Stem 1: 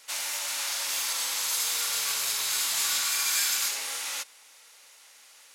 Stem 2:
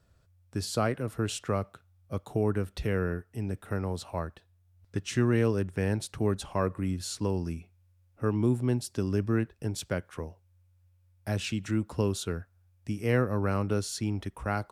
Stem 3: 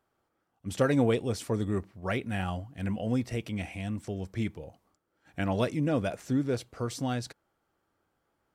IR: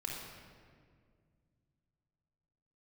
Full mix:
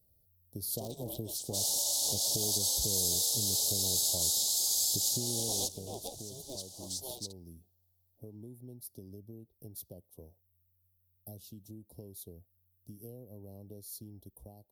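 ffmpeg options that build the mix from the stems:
-filter_complex "[0:a]adelay=1450,volume=0dB[link_01];[1:a]acompressor=threshold=-31dB:ratio=10,aexciter=amount=10.5:drive=9:freq=11000,volume=-9dB,afade=type=out:start_time=5.39:duration=0.58:silence=0.354813,asplit=2[link_02][link_03];[2:a]highpass=1300,dynaudnorm=framelen=230:gausssize=11:maxgain=8dB,aeval=exprs='val(0)*sgn(sin(2*PI*130*n/s))':channel_layout=same,volume=-9.5dB[link_04];[link_03]apad=whole_len=308639[link_05];[link_01][link_05]sidechaincompress=threshold=-45dB:ratio=8:attack=28:release=138[link_06];[link_06][link_04]amix=inputs=2:normalize=0,bandreject=frequency=2700:width=12,acompressor=threshold=-31dB:ratio=6,volume=0dB[link_07];[link_02][link_07]amix=inputs=2:normalize=0,asuperstop=centerf=1700:order=8:qfactor=0.55,dynaudnorm=framelen=390:gausssize=3:maxgain=5dB"

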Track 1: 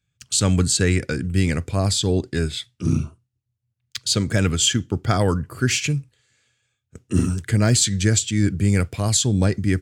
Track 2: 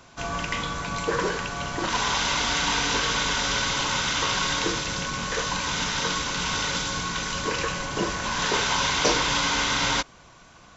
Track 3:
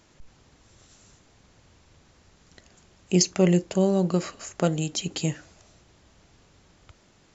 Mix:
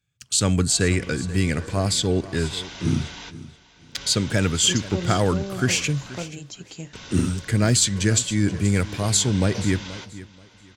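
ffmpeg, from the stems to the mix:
ffmpeg -i stem1.wav -i stem2.wav -i stem3.wav -filter_complex "[0:a]lowshelf=frequency=110:gain=-4.5,volume=-0.5dB,asplit=3[link_01][link_02][link_03];[link_02]volume=-17dB[link_04];[1:a]lowpass=6100,equalizer=frequency=1100:width=2.1:gain=-8,adelay=500,volume=-12.5dB,asplit=2[link_05][link_06];[link_06]volume=-17dB[link_07];[2:a]adelay=1550,volume=-10dB[link_08];[link_03]apad=whole_len=496887[link_09];[link_05][link_09]sidechaingate=range=-33dB:threshold=-57dB:ratio=16:detection=peak[link_10];[link_04][link_07]amix=inputs=2:normalize=0,aecho=0:1:481|962|1443|1924:1|0.23|0.0529|0.0122[link_11];[link_01][link_10][link_08][link_11]amix=inputs=4:normalize=0" out.wav

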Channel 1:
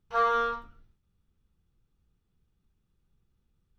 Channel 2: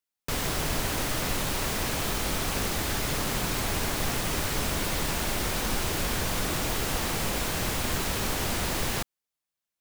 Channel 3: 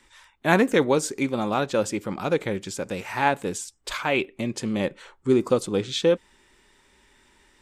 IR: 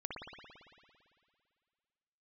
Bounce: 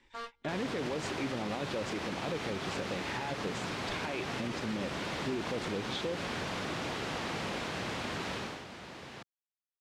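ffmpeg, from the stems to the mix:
-filter_complex "[0:a]acompressor=threshold=-29dB:ratio=6,acrusher=bits=4:mix=0:aa=0.000001,volume=-11dB[link_01];[1:a]highpass=130,adelay=200,volume=-4.5dB,afade=type=out:start_time=8.32:duration=0.32:silence=0.298538[link_02];[2:a]equalizer=frequency=1300:width_type=o:width=0.47:gain=-7.5,alimiter=limit=-18dB:level=0:latency=1:release=17,volume=-5.5dB,asplit=2[link_03][link_04];[link_04]apad=whole_len=167113[link_05];[link_01][link_05]sidechaingate=range=-38dB:threshold=-59dB:ratio=16:detection=peak[link_06];[link_06][link_02][link_03]amix=inputs=3:normalize=0,lowpass=4000,alimiter=level_in=2dB:limit=-24dB:level=0:latency=1:release=106,volume=-2dB"

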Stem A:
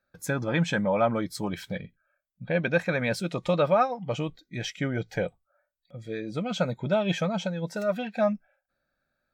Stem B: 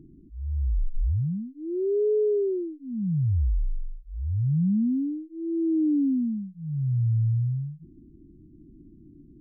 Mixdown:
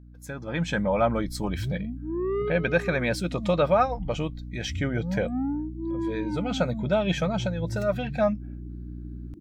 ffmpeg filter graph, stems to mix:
ffmpeg -i stem1.wav -i stem2.wav -filter_complex "[0:a]aeval=exprs='val(0)+0.0141*(sin(2*PI*60*n/s)+sin(2*PI*2*60*n/s)/2+sin(2*PI*3*60*n/s)/3+sin(2*PI*4*60*n/s)/4+sin(2*PI*5*60*n/s)/5)':channel_layout=same,volume=-10dB,asplit=2[link_01][link_02];[1:a]highpass=frequency=150:poles=1,asoftclip=type=tanh:threshold=-29dB,adelay=450,volume=-0.5dB[link_03];[link_02]apad=whole_len=434722[link_04];[link_03][link_04]sidechaincompress=threshold=-52dB:ratio=8:attack=8.4:release=135[link_05];[link_01][link_05]amix=inputs=2:normalize=0,dynaudnorm=framelen=400:gausssize=3:maxgain=11dB" out.wav

